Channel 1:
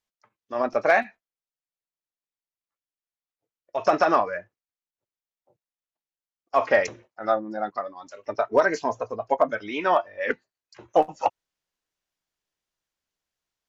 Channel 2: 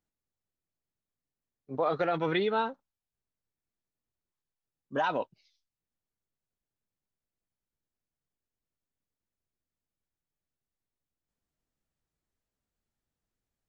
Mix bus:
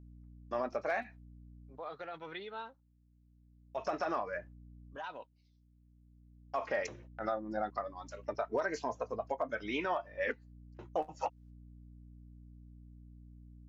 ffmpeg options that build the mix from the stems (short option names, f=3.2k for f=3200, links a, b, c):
-filter_complex "[0:a]agate=range=-28dB:threshold=-49dB:ratio=16:detection=peak,aeval=exprs='val(0)+0.00398*(sin(2*PI*60*n/s)+sin(2*PI*2*60*n/s)/2+sin(2*PI*3*60*n/s)/3+sin(2*PI*4*60*n/s)/4+sin(2*PI*5*60*n/s)/5)':c=same,volume=-4.5dB[a];[1:a]lowshelf=f=440:g=-11,volume=-12dB,asplit=2[b][c];[c]apad=whole_len=603363[d];[a][d]sidechaincompress=threshold=-57dB:ratio=8:attack=21:release=1450[e];[e][b]amix=inputs=2:normalize=0,alimiter=limit=-24dB:level=0:latency=1:release=250"